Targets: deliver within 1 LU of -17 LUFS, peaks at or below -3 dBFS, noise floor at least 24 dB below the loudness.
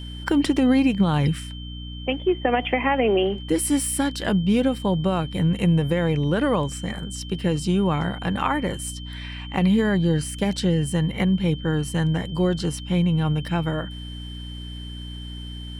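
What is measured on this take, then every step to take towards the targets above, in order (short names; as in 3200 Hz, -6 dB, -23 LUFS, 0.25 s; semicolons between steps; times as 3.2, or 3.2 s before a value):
hum 60 Hz; harmonics up to 300 Hz; hum level -33 dBFS; steady tone 3100 Hz; tone level -40 dBFS; loudness -22.5 LUFS; peak -7.0 dBFS; loudness target -17.0 LUFS
-> de-hum 60 Hz, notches 5; notch 3100 Hz, Q 30; gain +5.5 dB; limiter -3 dBFS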